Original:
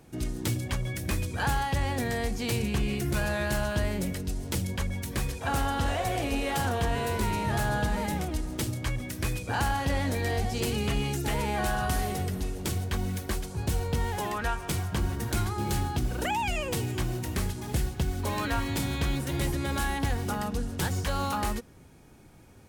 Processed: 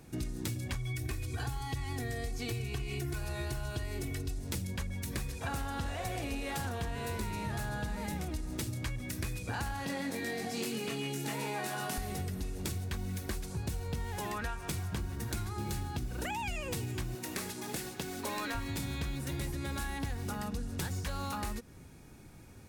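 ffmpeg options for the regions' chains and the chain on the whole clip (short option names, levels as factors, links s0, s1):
-filter_complex "[0:a]asettb=1/sr,asplit=3[s0][s1][s2];[s0]atrim=end=0.754[s3];[s1]atrim=start=0.75:end=4.39,asetpts=PTS-STARTPTS,afade=t=in:d=0.004:c=qsin,afade=t=out:st=3.636:d=0.004:c=qsin,equalizer=f=130:w=7.3:g=14,aecho=1:1:2.7:0.92,atrim=end_sample=160524,acrossover=split=600|3500[s4][s5][s6];[s4]acompressor=threshold=0.0501:ratio=4[s7];[s5]acompressor=threshold=0.0158:ratio=4[s8];[s6]acompressor=threshold=0.01:ratio=4[s9];[s7][s8][s9]amix=inputs=3:normalize=0[s10];[s2]atrim=start=4.386[s11];[s3][s10]acrossfade=d=0.004:c1=hsin:c2=qsin[s12];[s12][s11]acrossfade=d=0.004:c1=qsin:c2=hsin,asettb=1/sr,asplit=3[s13][s14][s15];[s13]atrim=end=9.864[s16];[s14]atrim=start=9.86:end=11.98,asetpts=PTS-STARTPTS,afade=t=in:d=0.004:c=qsin,afade=t=out:st=2.116:d=0.004:c=qsin,highpass=f=170:w=0.5412,highpass=f=170:w=1.3066,asplit=2[s17][s18];[s18]adelay=22,volume=0.631[s19];[s17][s19]amix=inputs=2:normalize=0,atrim=end_sample=93492,aecho=1:1:137:0.335,atrim=end_sample=93492[s20];[s15]atrim=start=11.976[s21];[s16][s20]acrossfade=d=0.004:c1=hsin:c2=qsin[s22];[s22][s21]acrossfade=d=0.004:c1=qsin:c2=hsin,asettb=1/sr,asplit=3[s23][s24][s25];[s23]atrim=end=17.154[s26];[s24]atrim=start=17.15:end=18.55,asetpts=PTS-STARTPTS,afade=t=in:d=0.004:c=qsin,afade=t=out:st=1.396:d=0.004:c=qsin,highpass=270,aeval=exprs='clip(val(0),-1,0.0398)':c=same[s27];[s25]atrim=start=18.546[s28];[s26][s27]acrossfade=d=0.004:c1=hsin:c2=qsin[s29];[s29][s28]acrossfade=d=0.004:c1=qsin:c2=hsin,equalizer=f=660:w=0.64:g=-4,bandreject=f=3100:w=14,acompressor=threshold=0.0178:ratio=6,volume=1.19"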